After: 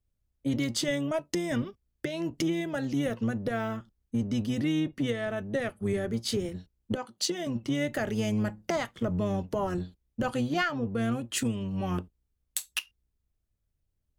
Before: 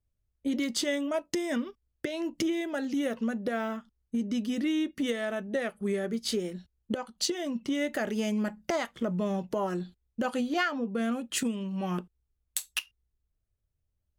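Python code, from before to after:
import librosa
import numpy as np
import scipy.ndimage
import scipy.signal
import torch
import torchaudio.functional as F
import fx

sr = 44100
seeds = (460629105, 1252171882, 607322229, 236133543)

y = fx.octave_divider(x, sr, octaves=1, level_db=-4.0)
y = fx.high_shelf(y, sr, hz=5300.0, db=-7.5, at=(4.8, 5.38))
y = fx.highpass(y, sr, hz=200.0, slope=12, at=(6.96, 7.47))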